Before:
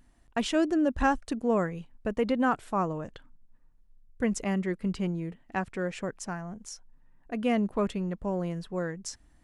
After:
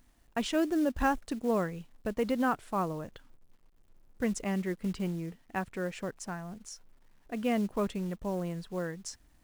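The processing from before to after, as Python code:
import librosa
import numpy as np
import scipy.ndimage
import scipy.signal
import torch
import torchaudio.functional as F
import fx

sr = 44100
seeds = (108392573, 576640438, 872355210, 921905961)

y = fx.quant_companded(x, sr, bits=6)
y = y * librosa.db_to_amplitude(-3.0)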